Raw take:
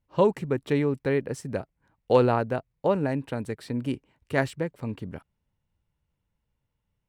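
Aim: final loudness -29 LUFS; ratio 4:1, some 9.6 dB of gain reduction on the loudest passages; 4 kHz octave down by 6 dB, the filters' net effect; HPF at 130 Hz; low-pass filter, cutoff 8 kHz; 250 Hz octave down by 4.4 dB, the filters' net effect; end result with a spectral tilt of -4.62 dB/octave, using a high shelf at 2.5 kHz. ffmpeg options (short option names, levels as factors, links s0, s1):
-af "highpass=130,lowpass=8000,equalizer=f=250:t=o:g=-5,highshelf=f=2500:g=-4.5,equalizer=f=4000:t=o:g=-4,acompressor=threshold=0.0447:ratio=4,volume=1.88"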